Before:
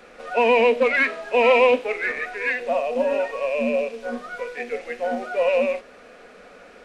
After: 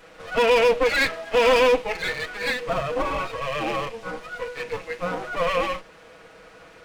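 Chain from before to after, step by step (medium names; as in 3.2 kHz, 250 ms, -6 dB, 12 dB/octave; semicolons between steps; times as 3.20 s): comb filter that takes the minimum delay 6.2 ms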